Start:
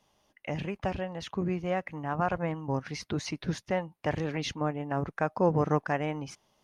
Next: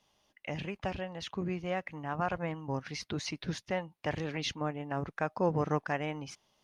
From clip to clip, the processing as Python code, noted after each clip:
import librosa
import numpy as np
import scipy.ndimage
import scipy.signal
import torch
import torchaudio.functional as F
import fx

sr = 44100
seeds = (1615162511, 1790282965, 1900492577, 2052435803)

y = fx.peak_eq(x, sr, hz=3600.0, db=5.5, octaves=1.9)
y = F.gain(torch.from_numpy(y), -4.5).numpy()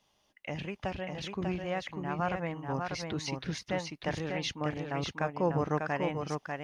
y = x + 10.0 ** (-4.5 / 20.0) * np.pad(x, (int(594 * sr / 1000.0), 0))[:len(x)]